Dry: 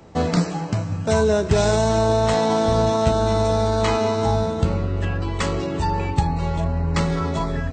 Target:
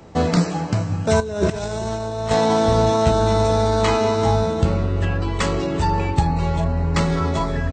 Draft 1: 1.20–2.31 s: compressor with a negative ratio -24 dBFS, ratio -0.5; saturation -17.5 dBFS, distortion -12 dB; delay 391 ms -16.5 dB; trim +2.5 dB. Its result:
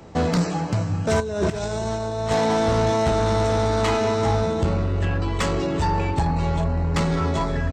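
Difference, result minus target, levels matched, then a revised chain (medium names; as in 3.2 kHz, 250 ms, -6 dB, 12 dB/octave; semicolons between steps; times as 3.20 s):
saturation: distortion +16 dB
1.20–2.31 s: compressor with a negative ratio -24 dBFS, ratio -0.5; saturation -6 dBFS, distortion -28 dB; delay 391 ms -16.5 dB; trim +2.5 dB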